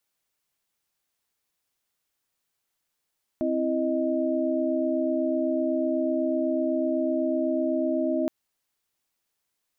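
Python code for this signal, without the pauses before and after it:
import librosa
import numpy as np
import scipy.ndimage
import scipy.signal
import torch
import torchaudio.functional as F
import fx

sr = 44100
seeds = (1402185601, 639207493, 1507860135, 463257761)

y = fx.chord(sr, length_s=4.87, notes=(60, 64, 75), wave='sine', level_db=-27.0)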